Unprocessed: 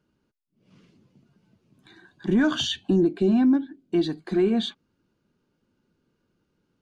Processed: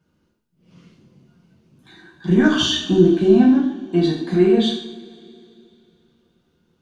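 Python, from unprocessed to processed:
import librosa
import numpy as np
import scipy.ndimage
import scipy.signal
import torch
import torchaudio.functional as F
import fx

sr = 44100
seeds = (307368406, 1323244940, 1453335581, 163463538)

y = fx.rev_double_slope(x, sr, seeds[0], early_s=0.6, late_s=3.0, knee_db=-21, drr_db=-5.5)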